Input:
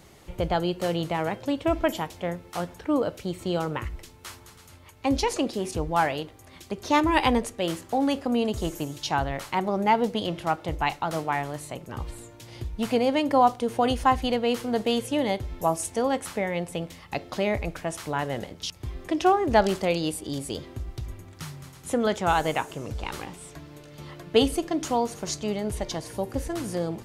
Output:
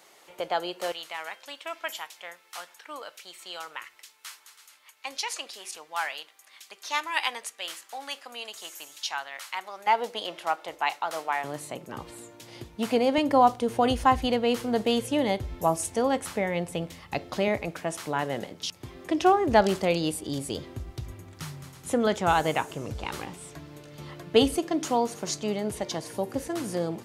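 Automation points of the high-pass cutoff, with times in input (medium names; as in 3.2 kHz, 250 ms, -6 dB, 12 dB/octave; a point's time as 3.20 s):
570 Hz
from 0.92 s 1.4 kHz
from 9.87 s 630 Hz
from 11.44 s 180 Hz
from 13.18 s 44 Hz
from 17.48 s 150 Hz
from 19.09 s 69 Hz
from 24.58 s 150 Hz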